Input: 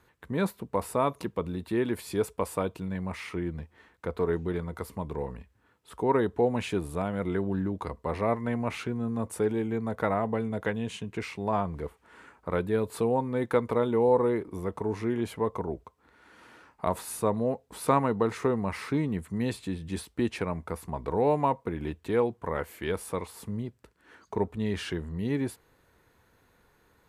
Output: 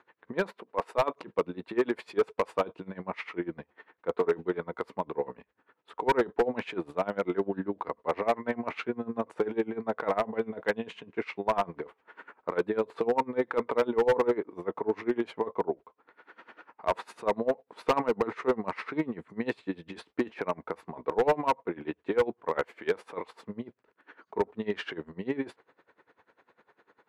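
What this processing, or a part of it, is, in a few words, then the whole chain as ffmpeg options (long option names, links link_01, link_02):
helicopter radio: -filter_complex "[0:a]asettb=1/sr,asplit=3[link_01][link_02][link_03];[link_01]atrim=end=0.574[link_04];[link_02]atrim=start=0.57:end=1.14,asetpts=PTS-STARTPTS,afade=type=in:duration=0.004:curve=qsin,afade=type=out:start_time=0.566:duration=0.004:curve=qsin,highpass=260[link_05];[link_03]atrim=start=1.136[link_06];[link_04][link_05]acrossfade=duration=0.004:curve1=hsin:curve2=qsin[link_07];[link_07][link_06]acrossfade=duration=0.004:curve1=qsin:curve2=hsin,highpass=330,lowpass=2500,aeval=exprs='val(0)*pow(10,-22*(0.5-0.5*cos(2*PI*10*n/s))/20)':channel_layout=same,asoftclip=type=hard:threshold=-26.5dB,volume=8.5dB"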